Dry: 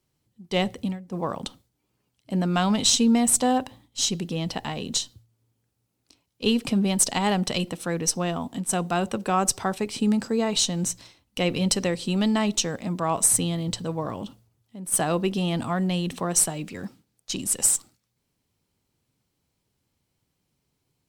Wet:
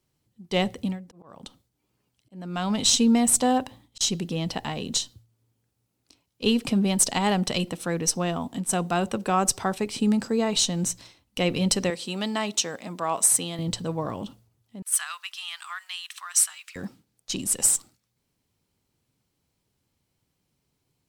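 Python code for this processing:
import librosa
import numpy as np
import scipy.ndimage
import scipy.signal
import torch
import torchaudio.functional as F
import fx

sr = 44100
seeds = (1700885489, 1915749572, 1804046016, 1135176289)

y = fx.auto_swell(x, sr, attack_ms=628.0, at=(0.95, 4.01))
y = fx.highpass(y, sr, hz=500.0, slope=6, at=(11.9, 13.59))
y = fx.steep_highpass(y, sr, hz=1200.0, slope=36, at=(14.82, 16.76))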